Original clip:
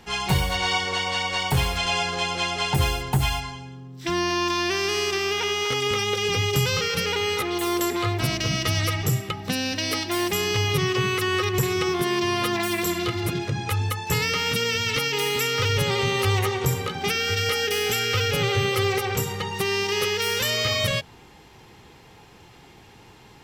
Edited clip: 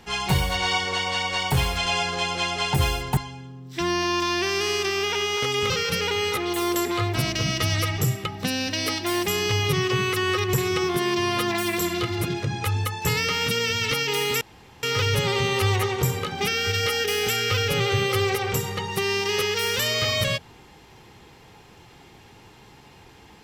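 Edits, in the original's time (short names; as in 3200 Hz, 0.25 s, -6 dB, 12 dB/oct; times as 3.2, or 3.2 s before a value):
3.17–3.45 cut
5.98–6.75 cut
15.46 insert room tone 0.42 s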